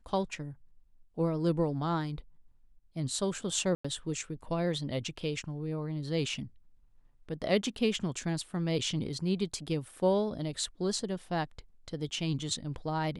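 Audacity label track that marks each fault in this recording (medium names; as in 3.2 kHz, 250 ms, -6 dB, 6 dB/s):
3.750000	3.850000	dropout 95 ms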